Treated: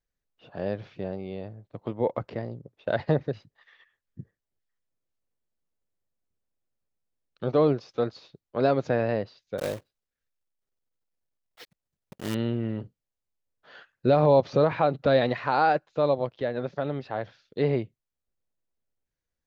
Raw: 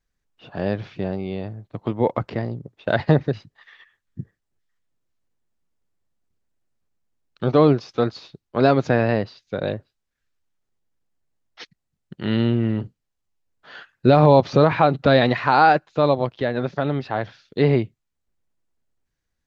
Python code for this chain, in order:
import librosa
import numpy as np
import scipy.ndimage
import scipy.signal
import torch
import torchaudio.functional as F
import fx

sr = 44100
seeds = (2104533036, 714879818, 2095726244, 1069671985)

y = fx.block_float(x, sr, bits=3, at=(9.58, 12.35))
y = fx.peak_eq(y, sr, hz=530.0, db=5.5, octaves=0.68)
y = y * 10.0 ** (-9.0 / 20.0)